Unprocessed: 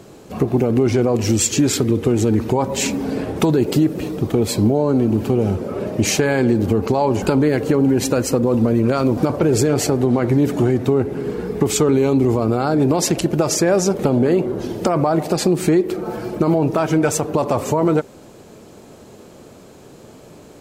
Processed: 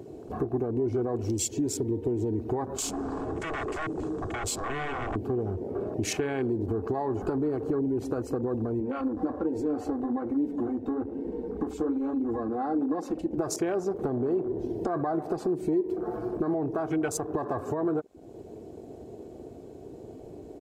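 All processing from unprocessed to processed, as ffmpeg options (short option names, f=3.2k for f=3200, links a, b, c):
-filter_complex "[0:a]asettb=1/sr,asplit=3[a][b][c];[a]atrim=end=2.774[d];[b]atrim=start=2.77:end=5.16,asetpts=PTS-STARTPTS,afade=t=in:d=0.004:c=qsin,afade=t=out:st=2.386:d=0.004:c=qsin,aeval=exprs='0.0891*(abs(mod(val(0)/0.0891+3,4)-2)-1)':c=same,lowpass=f=7.6k:t=q:w=3.1[e];[c]atrim=start=5.156[f];[d][e]acrossfade=d=0.004:c1=hsin:c2=qsin[g];[g][f]acrossfade=d=0.004:c1=qsin:c2=hsin,asettb=1/sr,asplit=3[h][i][j];[h]atrim=end=8.804[k];[i]atrim=start=8.8:end=13.38,asetpts=PTS-STARTPTS,afade=t=in:d=0.004:c=qsin,afade=t=out:st=4.576:d=0.004:c=qsin,highshelf=f=3.4k:g=-6.5,aecho=1:1:3.8:0.98,atrim=end_sample=201978,flanger=delay=5.1:depth=9.2:regen=-51:speed=1.2:shape=triangular[l];[j]atrim=start=13.376[m];[k][l]acrossfade=d=0.004:c1=hsin:c2=qsin[n];[n][m]acrossfade=d=0.004:c1=qsin:c2=hsin,acompressor=threshold=-34dB:ratio=2,aecho=1:1:2.7:0.51,afwtdn=0.0158,volume=-1.5dB"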